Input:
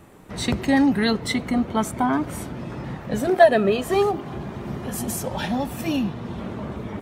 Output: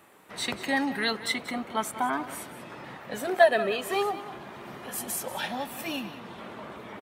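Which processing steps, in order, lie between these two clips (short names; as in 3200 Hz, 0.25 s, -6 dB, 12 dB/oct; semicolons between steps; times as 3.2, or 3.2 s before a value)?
HPF 1100 Hz 6 dB/oct; bell 6200 Hz -5 dB 0.95 oct; echo 0.186 s -14.5 dB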